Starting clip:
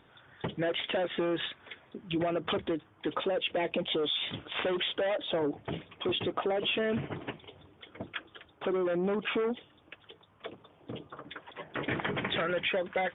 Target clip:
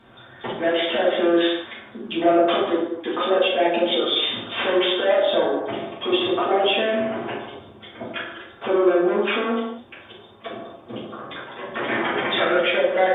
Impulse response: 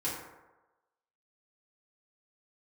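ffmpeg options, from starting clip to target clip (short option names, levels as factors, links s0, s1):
-filter_complex "[0:a]equalizer=f=76:t=o:w=0.36:g=-8.5,acrossover=split=330[s0][s1];[s0]acompressor=threshold=0.00282:ratio=6[s2];[s2][s1]amix=inputs=2:normalize=0[s3];[1:a]atrim=start_sample=2205,afade=t=out:st=0.26:d=0.01,atrim=end_sample=11907,asetrate=32193,aresample=44100[s4];[s3][s4]afir=irnorm=-1:irlink=0,volume=1.68"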